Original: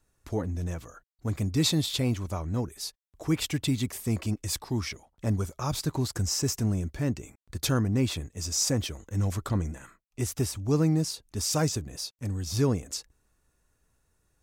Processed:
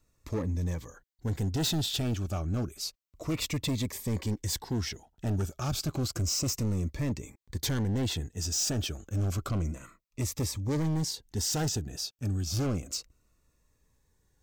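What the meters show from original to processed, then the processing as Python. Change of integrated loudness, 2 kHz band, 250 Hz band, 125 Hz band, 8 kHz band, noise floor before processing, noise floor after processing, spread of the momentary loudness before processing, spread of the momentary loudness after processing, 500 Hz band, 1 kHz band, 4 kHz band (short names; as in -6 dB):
-2.5 dB, -3.0 dB, -3.5 dB, -2.0 dB, -1.5 dB, -74 dBFS, -74 dBFS, 11 LU, 8 LU, -4.5 dB, -3.0 dB, -1.0 dB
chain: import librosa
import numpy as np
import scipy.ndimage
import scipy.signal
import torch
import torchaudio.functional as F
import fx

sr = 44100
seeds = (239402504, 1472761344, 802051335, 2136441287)

y = fx.peak_eq(x, sr, hz=10000.0, db=-10.5, octaves=0.27)
y = np.clip(y, -10.0 ** (-27.5 / 20.0), 10.0 ** (-27.5 / 20.0))
y = fx.notch_cascade(y, sr, direction='falling', hz=0.3)
y = F.gain(torch.from_numpy(y), 1.5).numpy()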